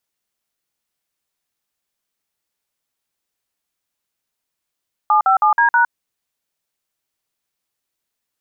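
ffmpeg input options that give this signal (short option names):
-f lavfi -i "aevalsrc='0.224*clip(min(mod(t,0.16),0.109-mod(t,0.16))/0.002,0,1)*(eq(floor(t/0.16),0)*(sin(2*PI*852*mod(t,0.16))+sin(2*PI*1209*mod(t,0.16)))+eq(floor(t/0.16),1)*(sin(2*PI*770*mod(t,0.16))+sin(2*PI*1336*mod(t,0.16)))+eq(floor(t/0.16),2)*(sin(2*PI*852*mod(t,0.16))+sin(2*PI*1209*mod(t,0.16)))+eq(floor(t/0.16),3)*(sin(2*PI*941*mod(t,0.16))+sin(2*PI*1633*mod(t,0.16)))+eq(floor(t/0.16),4)*(sin(2*PI*941*mod(t,0.16))+sin(2*PI*1477*mod(t,0.16))))':d=0.8:s=44100"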